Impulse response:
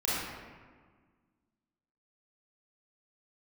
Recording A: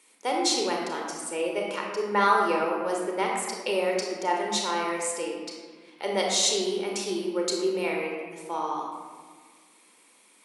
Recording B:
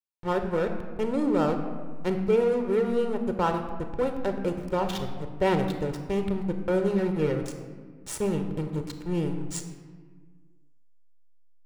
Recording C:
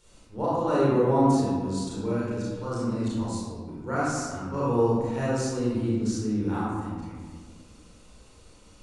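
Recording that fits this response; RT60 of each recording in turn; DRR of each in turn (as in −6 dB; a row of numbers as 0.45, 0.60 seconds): C; 1.6, 1.6, 1.6 seconds; −0.5, 6.0, −8.5 decibels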